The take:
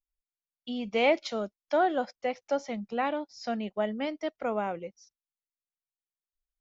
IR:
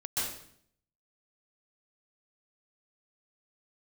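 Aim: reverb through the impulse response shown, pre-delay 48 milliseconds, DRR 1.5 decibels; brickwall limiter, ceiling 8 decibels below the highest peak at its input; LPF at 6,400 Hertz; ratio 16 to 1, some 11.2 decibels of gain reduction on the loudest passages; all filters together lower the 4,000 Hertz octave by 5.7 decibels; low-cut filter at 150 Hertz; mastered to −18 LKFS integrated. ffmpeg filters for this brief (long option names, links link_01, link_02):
-filter_complex "[0:a]highpass=150,lowpass=6400,equalizer=frequency=4000:width_type=o:gain=-8,acompressor=threshold=-31dB:ratio=16,alimiter=level_in=6dB:limit=-24dB:level=0:latency=1,volume=-6dB,asplit=2[link_01][link_02];[1:a]atrim=start_sample=2205,adelay=48[link_03];[link_02][link_03]afir=irnorm=-1:irlink=0,volume=-7dB[link_04];[link_01][link_04]amix=inputs=2:normalize=0,volume=20dB"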